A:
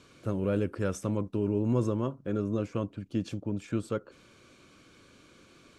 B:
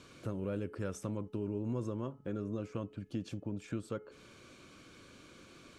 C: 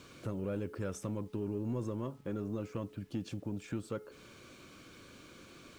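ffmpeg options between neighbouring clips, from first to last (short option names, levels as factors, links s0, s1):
-af "bandreject=f=427.1:t=h:w=4,bandreject=f=854.2:t=h:w=4,bandreject=f=1281.3:t=h:w=4,bandreject=f=1708.4:t=h:w=4,bandreject=f=2135.5:t=h:w=4,bandreject=f=2562.6:t=h:w=4,bandreject=f=2989.7:t=h:w=4,acompressor=threshold=0.00794:ratio=2,volume=1.12"
-filter_complex "[0:a]asplit=2[s0][s1];[s1]asoftclip=type=tanh:threshold=0.0188,volume=0.708[s2];[s0][s2]amix=inputs=2:normalize=0,acrusher=bits=10:mix=0:aa=0.000001,volume=0.708"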